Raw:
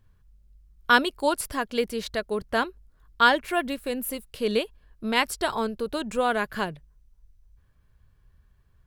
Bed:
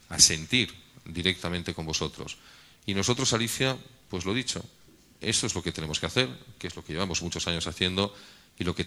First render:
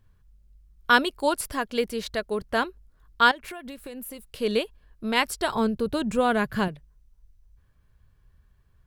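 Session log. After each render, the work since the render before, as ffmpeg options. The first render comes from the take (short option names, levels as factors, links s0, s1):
-filter_complex "[0:a]asettb=1/sr,asplit=3[s0][s1][s2];[s0]atrim=end=3.314[s3];[s1]atrim=start=3.31:end=4.32,asetpts=PTS-STARTPTS,afade=t=in:d=0.004:c=qsin,afade=t=out:st=1.006:d=0.004:c=qsin,acompressor=threshold=0.02:ratio=16:attack=3.2:release=140:knee=1:detection=peak[s4];[s2]atrim=start=4.316[s5];[s3][s4]acrossfade=d=0.004:c1=hsin:c2=qsin[s6];[s6][s5]acrossfade=d=0.004:c1=qsin:c2=hsin,asettb=1/sr,asplit=3[s7][s8][s9];[s7]atrim=end=5.554[s10];[s8]atrim=start=5.55:end=6.68,asetpts=PTS-STARTPTS,afade=t=in:d=0.004:c=qsin,afade=t=out:st=1.126:d=0.004:c=qsin,equalizer=f=120:t=o:w=1.8:g=13.5[s11];[s9]atrim=start=6.676[s12];[s10][s11]acrossfade=d=0.004:c1=hsin:c2=qsin[s13];[s13][s12]acrossfade=d=0.004:c1=qsin:c2=hsin"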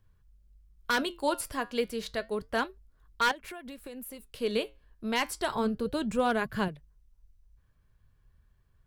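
-filter_complex "[0:a]acrossover=split=350|2900[s0][s1][s2];[s1]aeval=exprs='0.188*(abs(mod(val(0)/0.188+3,4)-2)-1)':c=same[s3];[s0][s3][s2]amix=inputs=3:normalize=0,flanger=delay=2:depth=6.7:regen=-81:speed=0.3:shape=sinusoidal"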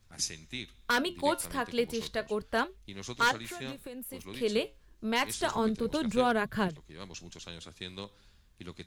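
-filter_complex "[1:a]volume=0.168[s0];[0:a][s0]amix=inputs=2:normalize=0"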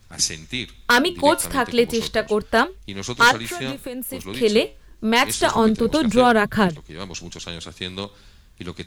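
-af "volume=3.98,alimiter=limit=0.708:level=0:latency=1"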